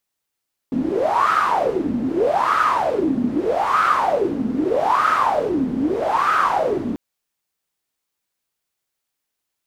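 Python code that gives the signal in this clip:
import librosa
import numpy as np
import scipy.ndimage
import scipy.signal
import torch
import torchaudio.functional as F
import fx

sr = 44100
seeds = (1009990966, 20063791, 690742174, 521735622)

y = fx.wind(sr, seeds[0], length_s=6.24, low_hz=240.0, high_hz=1300.0, q=11.0, gusts=5, swing_db=4.5)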